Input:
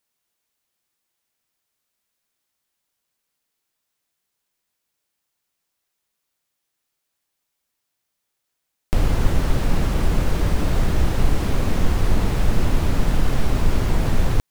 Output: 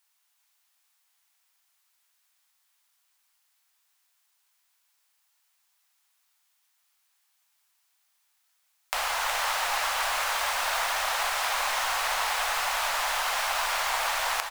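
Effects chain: inverse Chebyshev high-pass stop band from 380 Hz, stop band 40 dB; delay 368 ms -6 dB; trim +5.5 dB

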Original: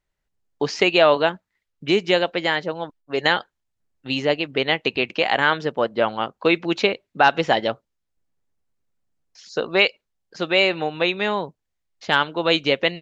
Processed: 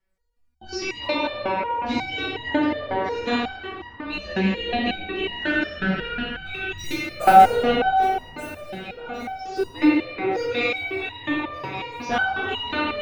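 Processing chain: 5.45–6.79 s: spectral selection erased 320–1300 Hz; in parallel at +3 dB: compression 16:1, threshold -28 dBFS, peak gain reduction 19 dB; on the sum: frequency shift -72 Hz; 6.76–7.50 s: companded quantiser 4-bit; phaser 0.41 Hz, delay 1.2 ms, feedback 60%; on a send: echo whose repeats swap between lows and highs 589 ms, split 2 kHz, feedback 71%, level -7.5 dB; on the sum: simulated room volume 120 m³, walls hard, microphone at 0.78 m; resonator arpeggio 5.5 Hz 190–950 Hz

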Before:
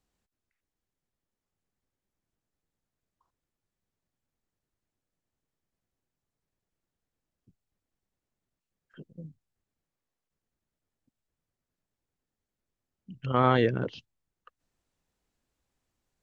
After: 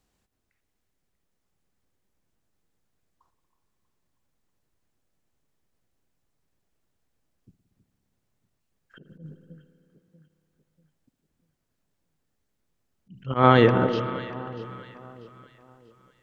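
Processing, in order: echo whose repeats swap between lows and highs 320 ms, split 1.1 kHz, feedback 60%, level -11.5 dB; spring tank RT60 2.9 s, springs 58 ms, chirp 65 ms, DRR 11 dB; slow attack 111 ms; trim +7 dB

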